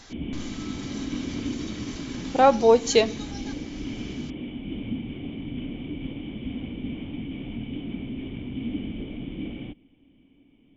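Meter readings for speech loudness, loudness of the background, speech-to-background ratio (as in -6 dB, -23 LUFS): -20.0 LUFS, -34.5 LUFS, 14.5 dB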